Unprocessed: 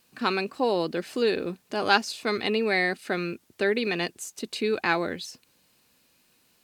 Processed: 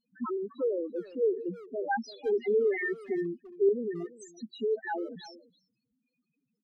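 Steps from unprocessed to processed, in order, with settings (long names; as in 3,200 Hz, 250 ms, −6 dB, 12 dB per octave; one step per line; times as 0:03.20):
spectral peaks only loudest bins 2
0:01.45–0:03.69: graphic EQ with 15 bands 100 Hz −10 dB, 400 Hz +6 dB, 1,000 Hz −4 dB
far-end echo of a speakerphone 340 ms, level −16 dB
level −1 dB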